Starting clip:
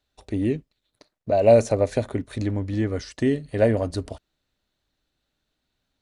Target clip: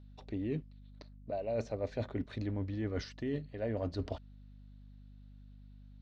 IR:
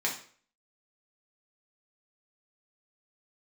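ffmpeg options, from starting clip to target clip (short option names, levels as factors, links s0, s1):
-af "lowpass=f=5000:w=0.5412,lowpass=f=5000:w=1.3066,areverse,acompressor=threshold=0.0282:ratio=12,areverse,aeval=exprs='val(0)+0.00282*(sin(2*PI*50*n/s)+sin(2*PI*2*50*n/s)/2+sin(2*PI*3*50*n/s)/3+sin(2*PI*4*50*n/s)/4+sin(2*PI*5*50*n/s)/5)':c=same,volume=0.841"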